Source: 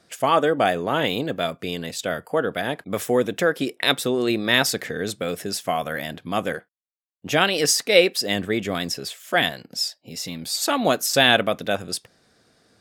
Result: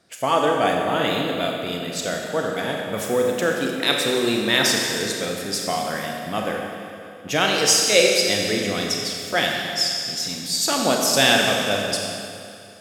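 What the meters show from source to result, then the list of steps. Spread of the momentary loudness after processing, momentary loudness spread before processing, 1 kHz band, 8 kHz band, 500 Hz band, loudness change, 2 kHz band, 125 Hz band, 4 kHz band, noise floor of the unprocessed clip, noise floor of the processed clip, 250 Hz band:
12 LU, 12 LU, +0.5 dB, +5.0 dB, +0.5 dB, +1.5 dB, +1.0 dB, 0.0 dB, +3.0 dB, −68 dBFS, −39 dBFS, +0.5 dB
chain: four-comb reverb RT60 2.6 s, combs from 30 ms, DRR 0 dB
dynamic equaliser 6,100 Hz, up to +6 dB, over −37 dBFS, Q 1.1
level −2.5 dB

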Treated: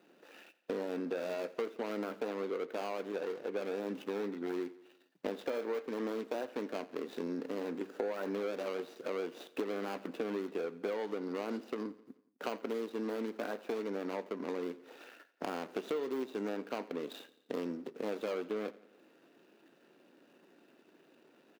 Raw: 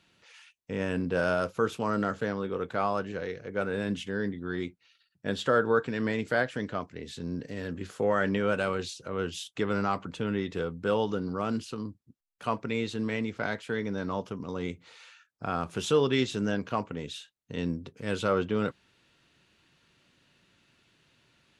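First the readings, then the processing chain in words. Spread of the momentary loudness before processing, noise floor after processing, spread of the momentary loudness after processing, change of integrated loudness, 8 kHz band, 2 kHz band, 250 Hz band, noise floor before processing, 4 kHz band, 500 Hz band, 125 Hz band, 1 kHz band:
11 LU, −67 dBFS, 6 LU, −8.0 dB, −12.0 dB, −12.5 dB, −8.0 dB, −71 dBFS, −11.0 dB, −6.0 dB, −19.0 dB, −10.5 dB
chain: running median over 41 samples
high-pass filter 280 Hz 24 dB per octave
de-essing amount 95%
parametric band 8,500 Hz −3.5 dB 0.82 octaves
in parallel at −1 dB: brickwall limiter −25 dBFS, peak gain reduction 9.5 dB
on the sum: downward compressor 6 to 1, threshold −42 dBFS, peak gain reduction 21.5 dB
on a send: repeating echo 86 ms, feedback 57%, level −19 dB
on the sum: level +7 dB

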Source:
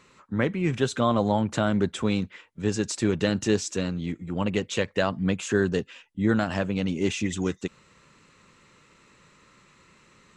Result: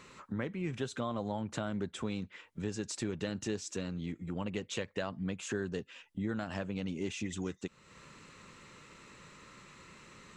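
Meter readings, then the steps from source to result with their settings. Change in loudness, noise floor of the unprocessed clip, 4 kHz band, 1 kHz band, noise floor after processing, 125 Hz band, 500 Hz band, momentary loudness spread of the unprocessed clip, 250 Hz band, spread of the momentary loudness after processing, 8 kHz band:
−11.5 dB, −59 dBFS, −10.5 dB, −13.0 dB, −64 dBFS, −11.5 dB, −12.5 dB, 7 LU, −11.5 dB, 17 LU, −9.0 dB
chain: downward compressor 2.5 to 1, threshold −43 dBFS, peak gain reduction 17 dB
level +2.5 dB

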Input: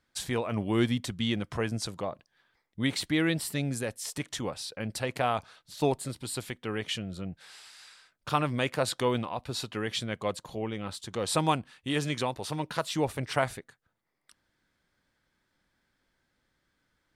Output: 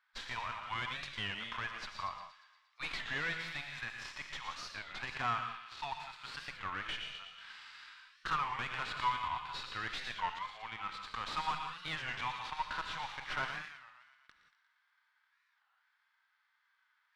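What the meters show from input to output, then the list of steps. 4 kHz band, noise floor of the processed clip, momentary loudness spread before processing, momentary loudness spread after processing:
−6.0 dB, −77 dBFS, 10 LU, 10 LU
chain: running median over 5 samples
Butterworth high-pass 960 Hz 36 dB per octave
delay with a high-pass on its return 117 ms, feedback 60%, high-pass 1,900 Hz, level −10 dB
transient designer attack +7 dB, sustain 0 dB
tube saturation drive 33 dB, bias 0.35
reverb whose tail is shaped and stops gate 200 ms rising, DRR 9.5 dB
harmonic and percussive parts rebalanced harmonic +9 dB
head-to-tape spacing loss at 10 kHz 23 dB
wow of a warped record 33 1/3 rpm, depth 250 cents
level +1 dB

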